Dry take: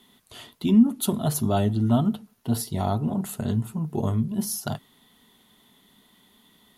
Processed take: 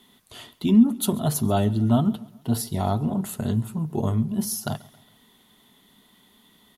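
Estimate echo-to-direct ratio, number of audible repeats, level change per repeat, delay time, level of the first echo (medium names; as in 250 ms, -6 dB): -21.0 dB, 2, -6.5 dB, 136 ms, -22.0 dB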